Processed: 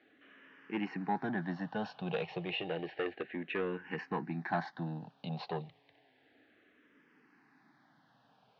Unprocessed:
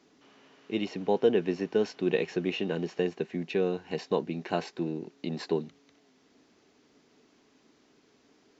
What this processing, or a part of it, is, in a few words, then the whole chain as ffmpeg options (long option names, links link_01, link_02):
barber-pole phaser into a guitar amplifier: -filter_complex "[0:a]asplit=2[link_01][link_02];[link_02]afreqshift=-0.31[link_03];[link_01][link_03]amix=inputs=2:normalize=1,asoftclip=type=tanh:threshold=-25dB,highpass=100,equalizer=frequency=130:width_type=q:width=4:gain=7,equalizer=frequency=240:width_type=q:width=4:gain=-4,equalizer=frequency=400:width_type=q:width=4:gain=-8,equalizer=frequency=800:width_type=q:width=4:gain=7,equalizer=frequency=1700:width_type=q:width=4:gain=9,lowpass=frequency=3700:width=0.5412,lowpass=frequency=3700:width=1.3066"